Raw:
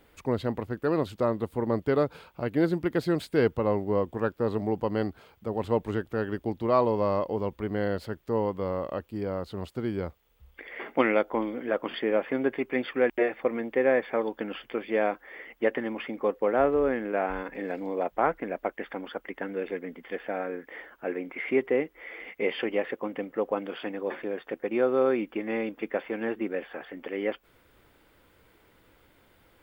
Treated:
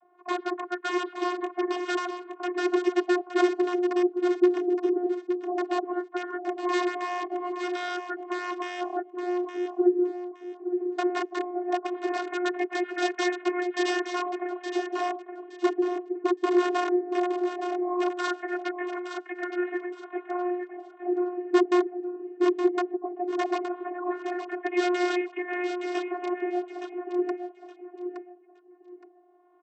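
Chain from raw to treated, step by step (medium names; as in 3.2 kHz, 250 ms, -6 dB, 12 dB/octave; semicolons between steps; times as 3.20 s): spectral peaks clipped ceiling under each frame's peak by 16 dB; LFO low-pass sine 0.17 Hz 380–1900 Hz; integer overflow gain 15 dB; vocoder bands 32, saw 357 Hz; on a send: feedback delay 868 ms, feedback 24%, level -8 dB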